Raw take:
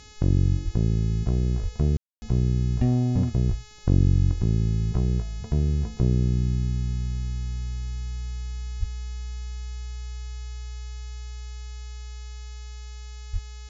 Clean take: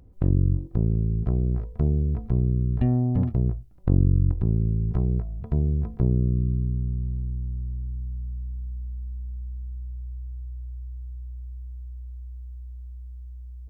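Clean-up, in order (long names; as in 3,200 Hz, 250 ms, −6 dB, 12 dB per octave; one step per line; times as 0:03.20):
hum removal 424.1 Hz, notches 17
high-pass at the plosives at 0:00.64/0:01.62/0:03.48/0:08.79/0:13.32
ambience match 0:01.97–0:02.22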